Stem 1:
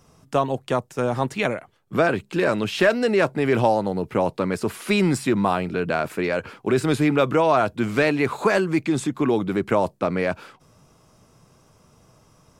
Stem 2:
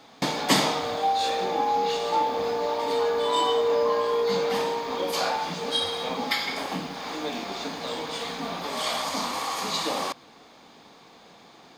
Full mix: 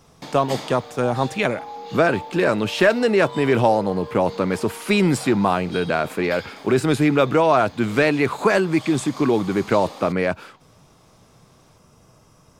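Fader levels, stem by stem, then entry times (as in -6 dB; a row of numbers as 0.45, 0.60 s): +2.0, -11.0 dB; 0.00, 0.00 s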